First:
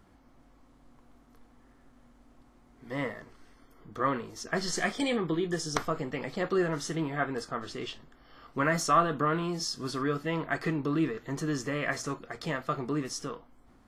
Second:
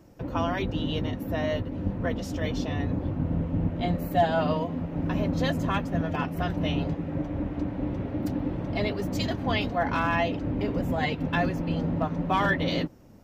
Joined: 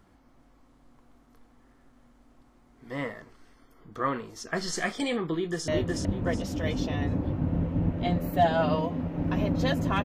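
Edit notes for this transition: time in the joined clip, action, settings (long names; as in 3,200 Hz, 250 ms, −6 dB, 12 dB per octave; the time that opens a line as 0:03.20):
first
0:05.34–0:05.68: delay throw 370 ms, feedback 30%, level −1 dB
0:05.68: continue with second from 0:01.46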